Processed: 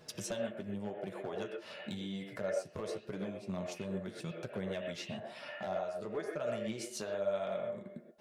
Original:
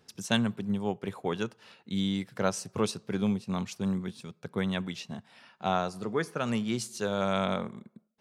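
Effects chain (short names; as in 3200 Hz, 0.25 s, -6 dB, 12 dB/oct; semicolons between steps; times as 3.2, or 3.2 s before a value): bell 610 Hz +13 dB 0.26 oct; compressor 16:1, threshold -42 dBFS, peak gain reduction 25 dB; overloaded stage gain 36 dB; flange 0.93 Hz, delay 5.6 ms, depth 8.1 ms, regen +32%; on a send: speaker cabinet 330–2900 Hz, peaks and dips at 370 Hz +8 dB, 590 Hz +9 dB, 1000 Hz -6 dB, 1700 Hz +5 dB, 2600 Hz +6 dB + reverb, pre-delay 3 ms, DRR -1 dB; on the sum: gain +8.5 dB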